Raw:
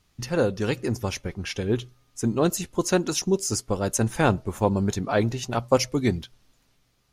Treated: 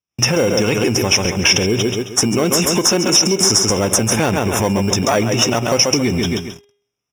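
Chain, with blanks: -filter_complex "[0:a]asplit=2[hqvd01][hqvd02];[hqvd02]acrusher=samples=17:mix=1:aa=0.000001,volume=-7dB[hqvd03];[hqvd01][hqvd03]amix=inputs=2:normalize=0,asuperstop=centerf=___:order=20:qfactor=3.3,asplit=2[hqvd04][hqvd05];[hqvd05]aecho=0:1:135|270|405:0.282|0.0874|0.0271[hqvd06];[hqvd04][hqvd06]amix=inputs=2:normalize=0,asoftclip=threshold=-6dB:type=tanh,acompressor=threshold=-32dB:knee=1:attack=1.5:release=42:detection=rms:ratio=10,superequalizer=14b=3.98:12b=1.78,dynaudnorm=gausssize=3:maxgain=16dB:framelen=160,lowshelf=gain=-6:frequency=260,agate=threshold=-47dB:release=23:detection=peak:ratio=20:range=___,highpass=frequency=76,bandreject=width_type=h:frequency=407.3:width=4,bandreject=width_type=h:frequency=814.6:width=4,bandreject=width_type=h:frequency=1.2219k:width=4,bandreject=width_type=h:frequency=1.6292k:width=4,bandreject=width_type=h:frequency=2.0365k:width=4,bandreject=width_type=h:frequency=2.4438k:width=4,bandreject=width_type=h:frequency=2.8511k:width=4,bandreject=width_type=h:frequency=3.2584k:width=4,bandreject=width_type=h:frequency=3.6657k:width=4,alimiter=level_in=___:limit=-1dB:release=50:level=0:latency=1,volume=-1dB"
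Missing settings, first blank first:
4400, -37dB, 7.5dB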